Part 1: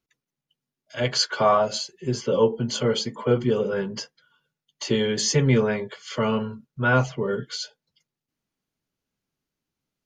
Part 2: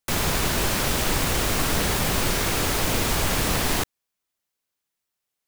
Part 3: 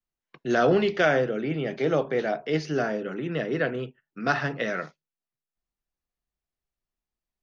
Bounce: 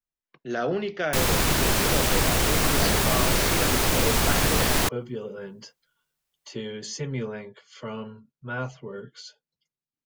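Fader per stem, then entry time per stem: −11.5, +1.0, −6.0 decibels; 1.65, 1.05, 0.00 seconds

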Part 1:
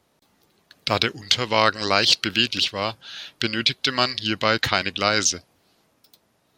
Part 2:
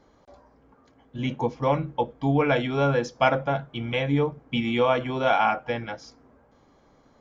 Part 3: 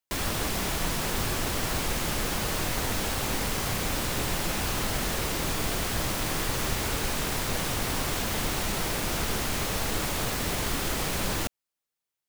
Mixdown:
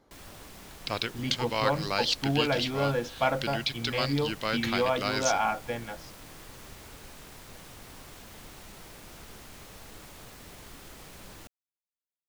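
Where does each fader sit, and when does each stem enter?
−10.5, −5.5, −18.5 decibels; 0.00, 0.00, 0.00 seconds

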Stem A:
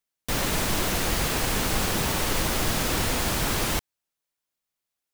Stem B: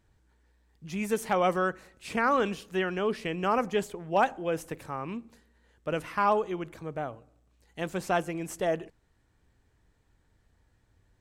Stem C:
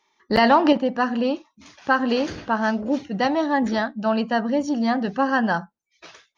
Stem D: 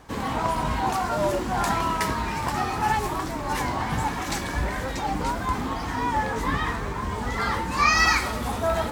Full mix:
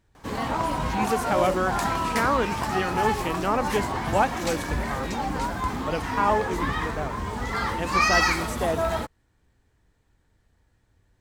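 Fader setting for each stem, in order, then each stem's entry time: muted, +1.5 dB, −18.5 dB, −1.5 dB; muted, 0.00 s, 0.00 s, 0.15 s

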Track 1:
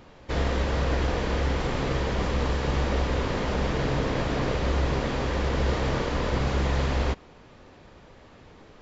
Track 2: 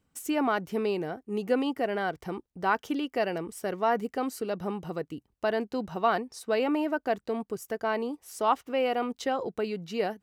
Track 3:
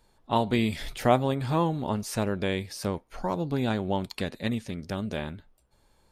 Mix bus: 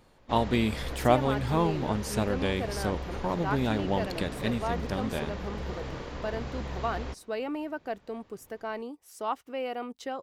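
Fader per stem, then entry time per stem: −11.5, −6.5, −1.0 decibels; 0.00, 0.80, 0.00 seconds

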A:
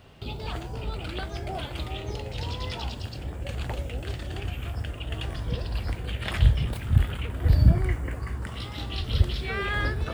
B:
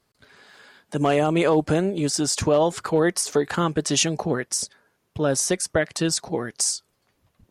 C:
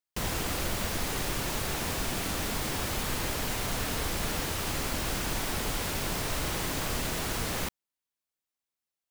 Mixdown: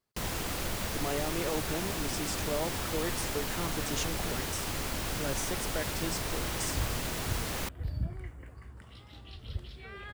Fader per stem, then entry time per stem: −16.0, −15.0, −3.0 decibels; 0.35, 0.00, 0.00 seconds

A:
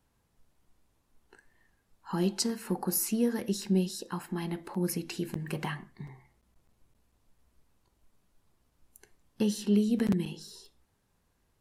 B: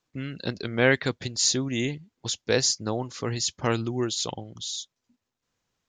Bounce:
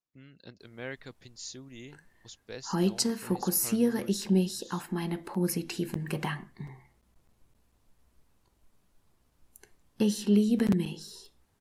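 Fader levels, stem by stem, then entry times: +2.0, −19.0 decibels; 0.60, 0.00 seconds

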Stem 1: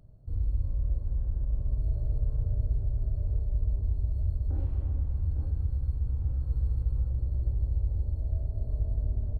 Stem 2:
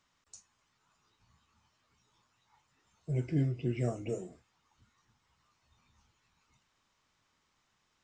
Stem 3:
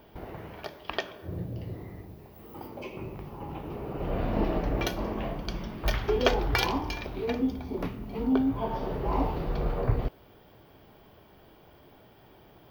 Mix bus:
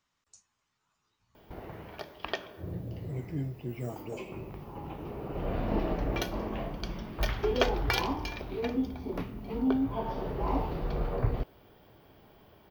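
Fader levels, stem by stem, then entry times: muted, −4.5 dB, −2.5 dB; muted, 0.00 s, 1.35 s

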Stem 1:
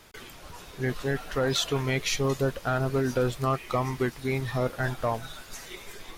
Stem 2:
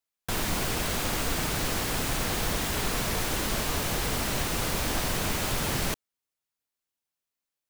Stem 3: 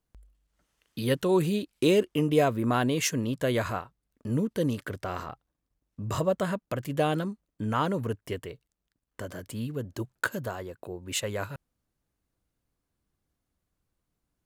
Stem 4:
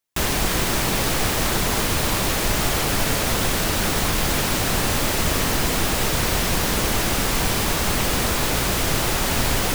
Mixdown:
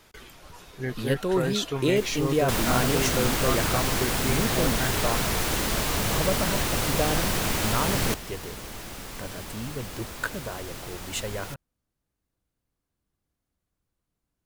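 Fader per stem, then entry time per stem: −2.5, +2.5, −1.5, −17.5 decibels; 0.00, 2.20, 0.00, 1.80 seconds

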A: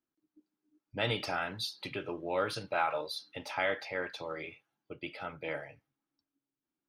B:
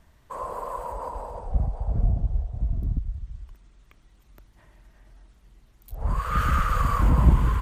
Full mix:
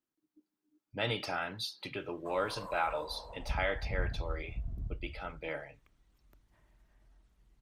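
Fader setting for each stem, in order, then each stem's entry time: −1.5, −12.5 decibels; 0.00, 1.95 seconds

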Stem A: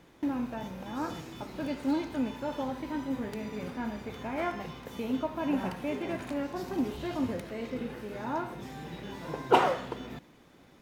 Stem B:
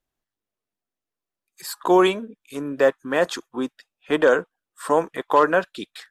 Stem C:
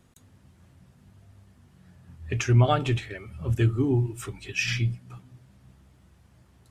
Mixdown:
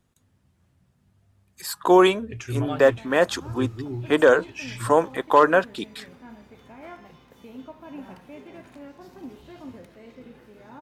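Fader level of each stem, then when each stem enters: −9.5, +1.0, −9.0 decibels; 2.45, 0.00, 0.00 seconds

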